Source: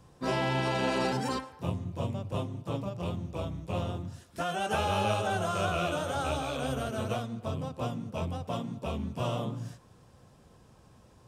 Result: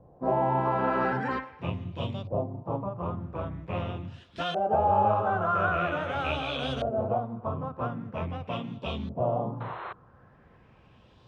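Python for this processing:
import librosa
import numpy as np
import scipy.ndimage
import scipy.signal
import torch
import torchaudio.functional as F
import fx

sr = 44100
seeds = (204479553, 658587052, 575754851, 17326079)

y = fx.spec_paint(x, sr, seeds[0], shape='noise', start_s=9.6, length_s=0.33, low_hz=330.0, high_hz=4200.0, level_db=-38.0)
y = fx.filter_lfo_lowpass(y, sr, shape='saw_up', hz=0.44, low_hz=610.0, high_hz=4000.0, q=2.9)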